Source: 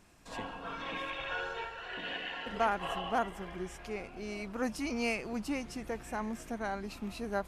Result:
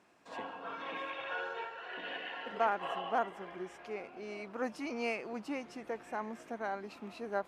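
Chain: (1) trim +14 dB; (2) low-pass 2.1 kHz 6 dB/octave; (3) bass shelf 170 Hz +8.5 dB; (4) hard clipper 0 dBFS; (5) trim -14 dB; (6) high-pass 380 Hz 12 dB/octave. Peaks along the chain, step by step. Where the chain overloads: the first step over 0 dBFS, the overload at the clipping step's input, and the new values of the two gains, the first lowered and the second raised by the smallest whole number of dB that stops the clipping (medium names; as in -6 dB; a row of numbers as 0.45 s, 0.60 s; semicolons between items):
-2.5 dBFS, -4.0 dBFS, -4.0 dBFS, -4.0 dBFS, -18.0 dBFS, -17.5 dBFS; nothing clips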